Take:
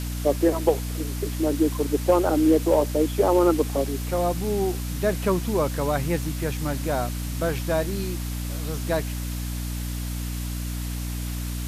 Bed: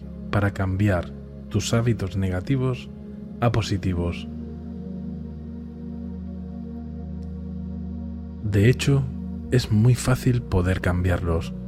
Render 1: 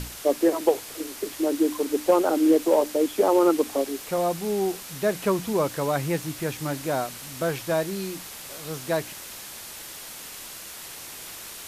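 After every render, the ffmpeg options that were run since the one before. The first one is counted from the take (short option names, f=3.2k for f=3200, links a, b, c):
-af "bandreject=f=60:t=h:w=6,bandreject=f=120:t=h:w=6,bandreject=f=180:t=h:w=6,bandreject=f=240:t=h:w=6,bandreject=f=300:t=h:w=6"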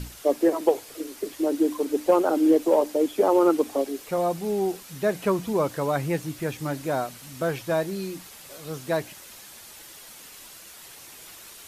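-af "afftdn=nr=7:nf=-40"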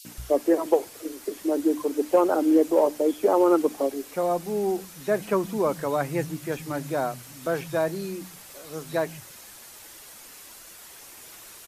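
-filter_complex "[0:a]acrossover=split=150|3400[a][b][c];[b]adelay=50[d];[a]adelay=180[e];[e][d][c]amix=inputs=3:normalize=0"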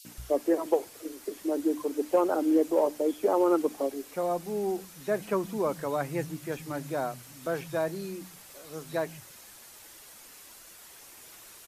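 -af "volume=-4.5dB"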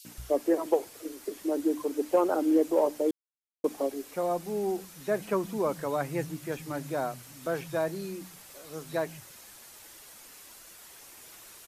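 -filter_complex "[0:a]asplit=3[a][b][c];[a]atrim=end=3.11,asetpts=PTS-STARTPTS,afade=t=out:st=3.106:d=0.004:c=hsin[d];[b]atrim=start=3.11:end=3.64,asetpts=PTS-STARTPTS,volume=0[e];[c]atrim=start=3.64,asetpts=PTS-STARTPTS,afade=t=in:d=0.004:c=hsin[f];[d][e][f]concat=n=3:v=0:a=1"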